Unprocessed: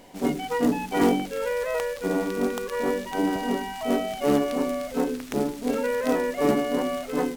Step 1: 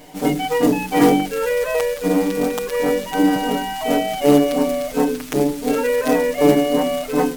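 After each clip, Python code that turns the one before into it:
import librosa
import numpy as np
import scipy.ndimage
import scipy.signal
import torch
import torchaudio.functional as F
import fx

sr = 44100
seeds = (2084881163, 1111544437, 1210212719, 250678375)

y = fx.high_shelf(x, sr, hz=11000.0, db=6.0)
y = y + 0.96 * np.pad(y, (int(6.6 * sr / 1000.0), 0))[:len(y)]
y = y * 10.0 ** (4.0 / 20.0)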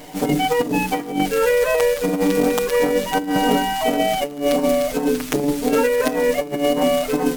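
y = fx.over_compress(x, sr, threshold_db=-19.0, ratio=-0.5)
y = fx.dmg_crackle(y, sr, seeds[0], per_s=95.0, level_db=-32.0)
y = y * 10.0 ** (1.5 / 20.0)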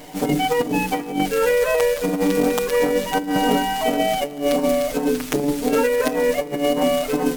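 y = x + 10.0 ** (-22.5 / 20.0) * np.pad(x, (int(266 * sr / 1000.0), 0))[:len(x)]
y = y * 10.0 ** (-1.0 / 20.0)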